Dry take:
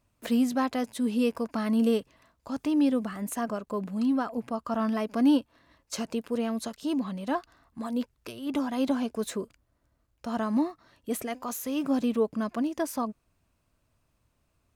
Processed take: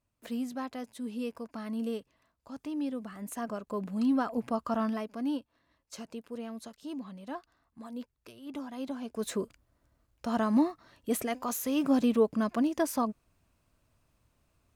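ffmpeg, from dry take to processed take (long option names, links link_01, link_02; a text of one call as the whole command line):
ffmpeg -i in.wav -af "volume=12.5dB,afade=type=in:start_time=2.97:duration=1.61:silence=0.281838,afade=type=out:start_time=4.58:duration=0.56:silence=0.266073,afade=type=in:start_time=9.01:duration=0.41:silence=0.266073" out.wav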